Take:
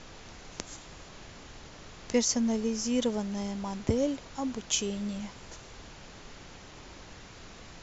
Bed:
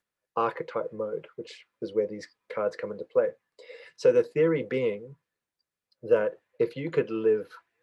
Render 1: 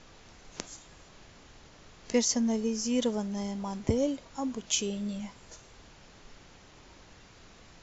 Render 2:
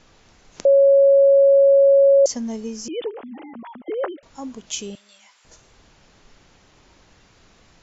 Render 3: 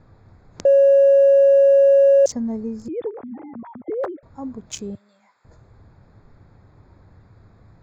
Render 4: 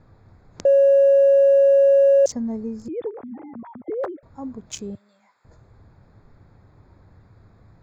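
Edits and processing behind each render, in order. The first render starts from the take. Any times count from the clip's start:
noise print and reduce 6 dB
0.65–2.26 s: bleep 553 Hz -9.5 dBFS; 2.88–4.23 s: formants replaced by sine waves; 4.95–5.45 s: high-pass 1.2 kHz
local Wiener filter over 15 samples; peaking EQ 100 Hz +14 dB 1.2 oct
trim -1.5 dB

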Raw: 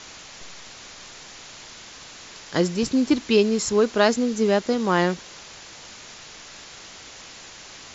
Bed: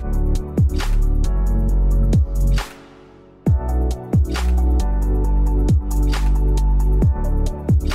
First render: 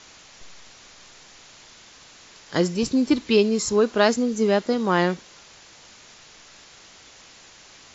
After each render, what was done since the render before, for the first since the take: noise print and reduce 6 dB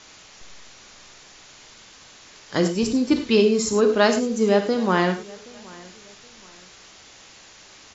feedback delay 773 ms, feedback 34%, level -23 dB; gated-style reverb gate 130 ms flat, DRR 6 dB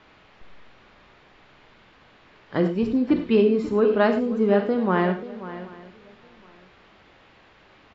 distance through air 470 m; delay 535 ms -14.5 dB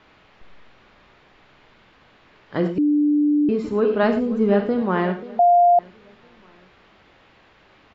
2.78–3.49 s: bleep 295 Hz -14.5 dBFS; 4.03–4.82 s: bass shelf 130 Hz +10.5 dB; 5.39–5.79 s: bleep 701 Hz -10.5 dBFS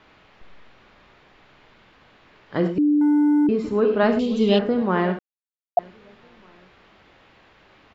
3.01–3.47 s: waveshaping leveller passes 1; 4.19–4.59 s: resonant high shelf 2.3 kHz +13 dB, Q 3; 5.19–5.77 s: mute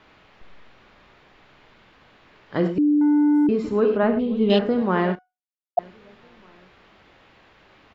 2.79–3.35 s: treble shelf 4.7 kHz -8.5 dB; 3.97–4.50 s: distance through air 490 m; 5.15–5.78 s: feedback comb 740 Hz, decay 0.24 s, mix 80%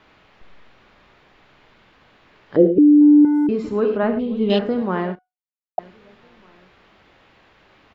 2.56–3.25 s: FFT filter 170 Hz 0 dB, 480 Hz +14 dB, 1 kHz -20 dB, 3.8 kHz -12 dB, 5.5 kHz -30 dB; 4.70–5.78 s: studio fade out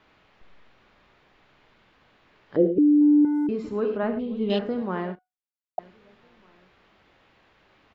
trim -6.5 dB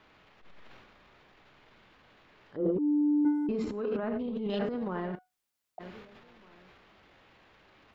compression 1.5:1, threshold -41 dBFS, peak gain reduction 9.5 dB; transient shaper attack -10 dB, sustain +11 dB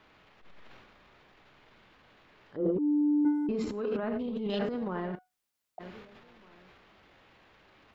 3.57–4.81 s: treble shelf 3.8 kHz +6.5 dB

